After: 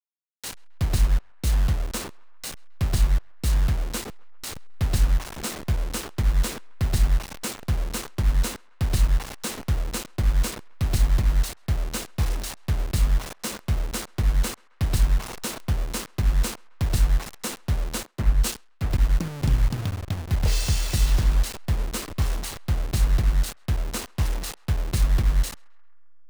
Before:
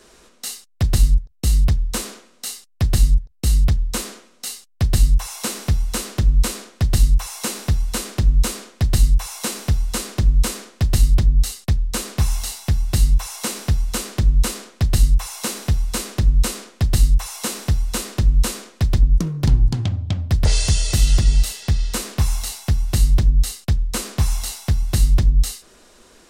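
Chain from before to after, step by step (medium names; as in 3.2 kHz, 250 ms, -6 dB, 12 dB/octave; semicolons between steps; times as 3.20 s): send-on-delta sampling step -23 dBFS; band-passed feedback delay 133 ms, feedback 67%, band-pass 1.3 kHz, level -24 dB; 18.03–18.91 s: three bands expanded up and down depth 100%; trim -5.5 dB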